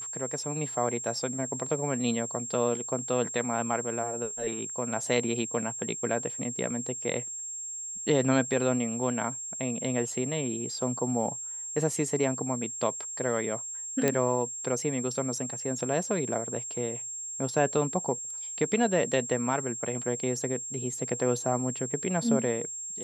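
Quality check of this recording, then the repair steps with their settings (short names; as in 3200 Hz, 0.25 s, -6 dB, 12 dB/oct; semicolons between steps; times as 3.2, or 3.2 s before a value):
tone 7500 Hz -35 dBFS
14.08 pop -10 dBFS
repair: de-click; notch 7500 Hz, Q 30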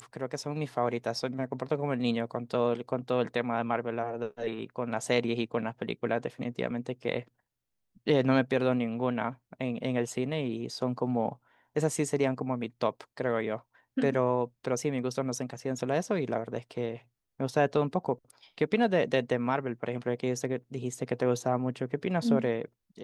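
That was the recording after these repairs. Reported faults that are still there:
none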